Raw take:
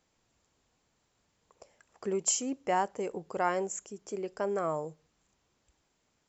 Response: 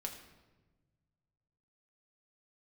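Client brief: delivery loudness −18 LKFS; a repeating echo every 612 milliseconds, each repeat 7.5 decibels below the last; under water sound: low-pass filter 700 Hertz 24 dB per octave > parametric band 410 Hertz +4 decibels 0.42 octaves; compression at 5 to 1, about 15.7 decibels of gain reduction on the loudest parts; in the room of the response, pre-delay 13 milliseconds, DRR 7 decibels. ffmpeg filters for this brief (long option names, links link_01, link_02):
-filter_complex "[0:a]acompressor=threshold=-43dB:ratio=5,aecho=1:1:612|1224|1836|2448|3060:0.422|0.177|0.0744|0.0312|0.0131,asplit=2[link_01][link_02];[1:a]atrim=start_sample=2205,adelay=13[link_03];[link_02][link_03]afir=irnorm=-1:irlink=0,volume=-5.5dB[link_04];[link_01][link_04]amix=inputs=2:normalize=0,lowpass=frequency=700:width=0.5412,lowpass=frequency=700:width=1.3066,equalizer=frequency=410:width_type=o:width=0.42:gain=4,volume=26.5dB"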